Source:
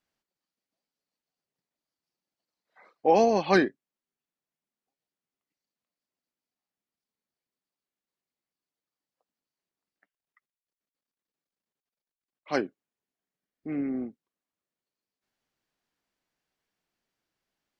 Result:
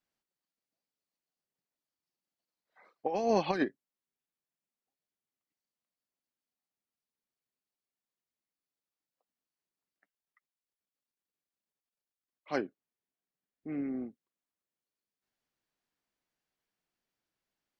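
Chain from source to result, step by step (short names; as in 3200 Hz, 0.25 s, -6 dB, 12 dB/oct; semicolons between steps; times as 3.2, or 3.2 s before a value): 3.06–3.64 negative-ratio compressor -23 dBFS, ratio -0.5; 12.52–13.74 high shelf 4300 Hz -5.5 dB; gain -5 dB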